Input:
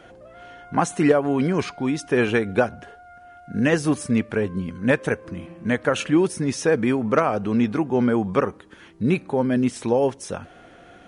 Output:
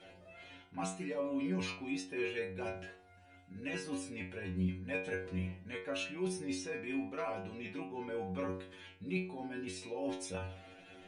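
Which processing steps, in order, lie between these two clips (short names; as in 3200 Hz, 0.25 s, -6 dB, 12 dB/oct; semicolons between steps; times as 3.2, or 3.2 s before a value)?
thirty-one-band EQ 1250 Hz -6 dB, 2500 Hz +9 dB, 4000 Hz +7 dB; reverse; compressor 6:1, threshold -28 dBFS, peak gain reduction 15.5 dB; reverse; metallic resonator 91 Hz, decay 0.58 s, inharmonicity 0.002; gain +4.5 dB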